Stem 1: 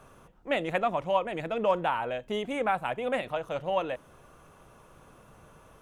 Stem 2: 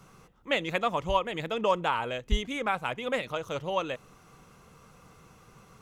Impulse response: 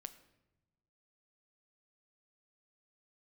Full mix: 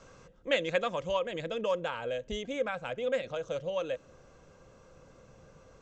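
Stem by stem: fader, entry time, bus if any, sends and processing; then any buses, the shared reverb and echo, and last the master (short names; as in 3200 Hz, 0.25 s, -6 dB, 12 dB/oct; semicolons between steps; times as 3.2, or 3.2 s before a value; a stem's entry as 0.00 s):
-7.0 dB, 0.00 s, no send, LPF 1500 Hz; tilt shelf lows +6 dB, about 700 Hz; compressor, threshold -32 dBFS, peak gain reduction 12 dB
-3.5 dB, 0.00 s, send -19 dB, tilt +2 dB/oct; auto duck -7 dB, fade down 1.90 s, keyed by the first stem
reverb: on, RT60 1.0 s, pre-delay 7 ms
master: steep low-pass 7700 Hz 72 dB/oct; small resonant body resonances 520/1600 Hz, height 11 dB, ringing for 45 ms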